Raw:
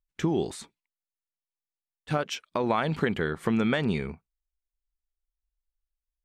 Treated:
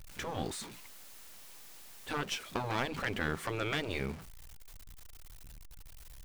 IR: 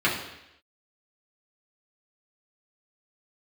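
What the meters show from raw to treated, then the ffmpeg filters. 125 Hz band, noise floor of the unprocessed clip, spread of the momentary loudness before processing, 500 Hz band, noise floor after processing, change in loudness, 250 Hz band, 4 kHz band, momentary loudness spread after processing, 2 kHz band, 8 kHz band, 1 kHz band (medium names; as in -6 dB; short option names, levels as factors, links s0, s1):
-8.5 dB, under -85 dBFS, 8 LU, -9.5 dB, -51 dBFS, -8.5 dB, -12.5 dB, -1.5 dB, 20 LU, -3.0 dB, +0.5 dB, -6.0 dB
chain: -af "aeval=exprs='val(0)+0.5*0.0126*sgn(val(0))':c=same,aeval=exprs='0.299*(cos(1*acos(clip(val(0)/0.299,-1,1)))-cos(1*PI/2))+0.0335*(cos(6*acos(clip(val(0)/0.299,-1,1)))-cos(6*PI/2))':c=same,afftfilt=real='re*lt(hypot(re,im),0.251)':imag='im*lt(hypot(re,im),0.251)':win_size=1024:overlap=0.75,volume=0.596"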